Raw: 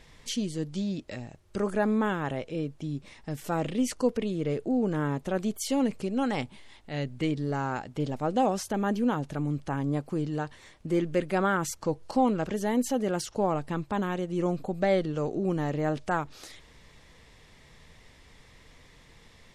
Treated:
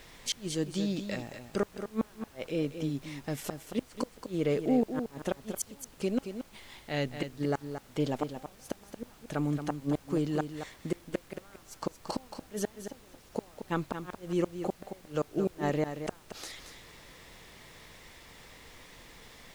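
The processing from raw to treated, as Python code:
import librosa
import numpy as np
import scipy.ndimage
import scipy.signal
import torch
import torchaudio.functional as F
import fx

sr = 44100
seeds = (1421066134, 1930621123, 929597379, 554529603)

p1 = fx.low_shelf(x, sr, hz=170.0, db=-10.5)
p2 = fx.gate_flip(p1, sr, shuts_db=-22.0, range_db=-35)
p3 = fx.dmg_noise_colour(p2, sr, seeds[0], colour='pink', level_db=-61.0)
p4 = p3 + fx.echo_single(p3, sr, ms=226, db=-9.0, dry=0)
y = p4 * 10.0 ** (3.5 / 20.0)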